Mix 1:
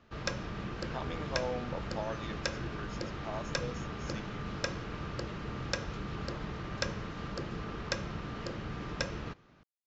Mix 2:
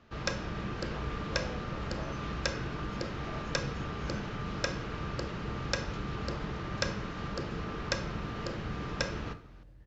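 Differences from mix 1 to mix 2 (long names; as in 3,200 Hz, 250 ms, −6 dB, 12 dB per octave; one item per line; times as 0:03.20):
speech −9.5 dB
second sound: unmuted
reverb: on, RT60 0.55 s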